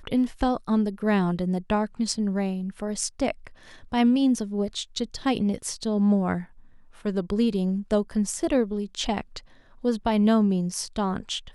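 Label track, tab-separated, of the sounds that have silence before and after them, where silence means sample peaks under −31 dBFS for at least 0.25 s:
3.920000	6.420000	sound
7.050000	9.380000	sound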